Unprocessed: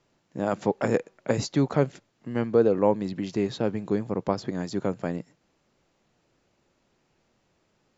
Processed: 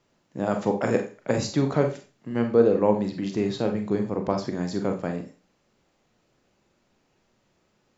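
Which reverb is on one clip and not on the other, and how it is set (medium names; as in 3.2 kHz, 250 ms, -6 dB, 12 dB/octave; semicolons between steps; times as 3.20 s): Schroeder reverb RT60 0.33 s, combs from 30 ms, DRR 4.5 dB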